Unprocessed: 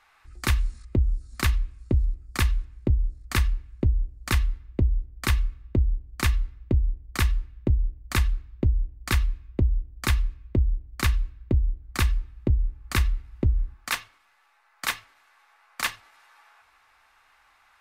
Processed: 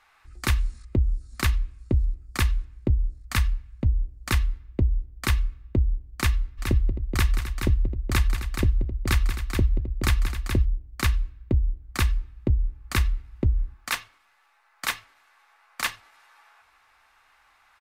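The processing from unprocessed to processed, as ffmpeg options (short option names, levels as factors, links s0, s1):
-filter_complex "[0:a]asettb=1/sr,asplit=3[s0][s1][s2];[s0]atrim=end=3.214[s3];[s1]atrim=start=3.21:end=3.87,asetpts=PTS-STARTPTS,afade=t=in:d=0.004:c=qsin,afade=t=out:st=0.656:d=0.004:c=qsin,equalizer=f=370:w=2.4:g=-10.5[s4];[s2]atrim=start=3.866[s5];[s3][s4]acrossfade=d=0.004:c1=hsin:c2=qsin[s6];[s6][s5]acrossfade=d=0.004:c1=qsin:c2=hsin,asplit=3[s7][s8][s9];[s7]afade=t=out:st=6.57:d=0.02[s10];[s8]aecho=1:1:182|263|425:0.316|0.224|0.473,afade=t=in:st=6.57:d=0.02,afade=t=out:st=10.65:d=0.02[s11];[s9]afade=t=in:st=10.65:d=0.02[s12];[s10][s11][s12]amix=inputs=3:normalize=0"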